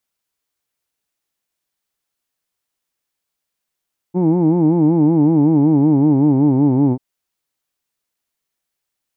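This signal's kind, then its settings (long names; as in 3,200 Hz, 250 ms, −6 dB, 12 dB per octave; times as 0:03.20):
vowel by formant synthesis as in who'd, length 2.84 s, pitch 172 Hz, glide −4.5 semitones, vibrato depth 1.3 semitones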